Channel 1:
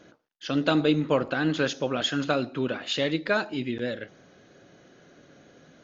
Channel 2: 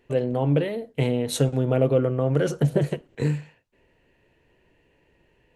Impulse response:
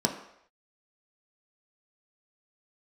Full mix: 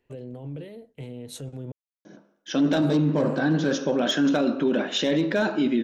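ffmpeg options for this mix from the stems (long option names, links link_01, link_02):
-filter_complex "[0:a]acontrast=34,asoftclip=type=hard:threshold=-13dB,adelay=2050,volume=-5dB,asplit=2[link_01][link_02];[link_02]volume=-9.5dB[link_03];[1:a]alimiter=limit=-17dB:level=0:latency=1:release=14,acrossover=split=460|3000[link_04][link_05][link_06];[link_05]acompressor=threshold=-38dB:ratio=6[link_07];[link_04][link_07][link_06]amix=inputs=3:normalize=0,volume=-10.5dB,asplit=3[link_08][link_09][link_10];[link_08]atrim=end=1.72,asetpts=PTS-STARTPTS,afade=type=out:start_time=1.716:duration=0.004:curve=hsin[link_11];[link_09]atrim=start=1.72:end=2.77,asetpts=PTS-STARTPTS,volume=0[link_12];[link_10]atrim=start=2.77,asetpts=PTS-STARTPTS,afade=type=in:duration=0.004:curve=hsin[link_13];[link_11][link_12][link_13]concat=n=3:v=0:a=1,asplit=2[link_14][link_15];[link_15]apad=whole_len=347746[link_16];[link_01][link_16]sidechaincompress=threshold=-51dB:ratio=8:attack=16:release=685[link_17];[2:a]atrim=start_sample=2205[link_18];[link_03][link_18]afir=irnorm=-1:irlink=0[link_19];[link_17][link_14][link_19]amix=inputs=3:normalize=0,alimiter=limit=-14.5dB:level=0:latency=1:release=21"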